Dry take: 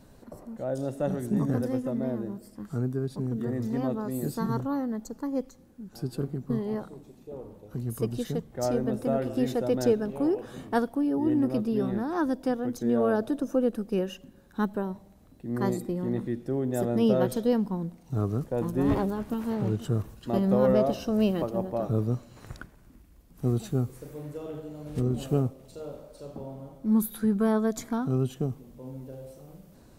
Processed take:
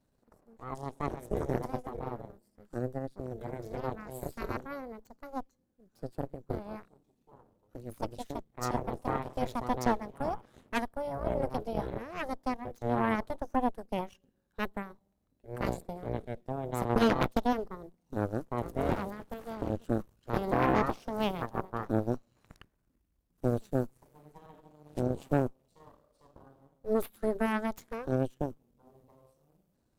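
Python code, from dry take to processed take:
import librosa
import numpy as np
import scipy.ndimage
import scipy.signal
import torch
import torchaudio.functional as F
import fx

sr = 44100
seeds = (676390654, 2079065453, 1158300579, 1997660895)

y = fx.transient(x, sr, attack_db=12, sustain_db=-8, at=(16.89, 17.42))
y = fx.cheby_harmonics(y, sr, harmonics=(6, 7), levels_db=(-7, -15), full_scale_db=-8.5)
y = F.gain(torch.from_numpy(y), -8.5).numpy()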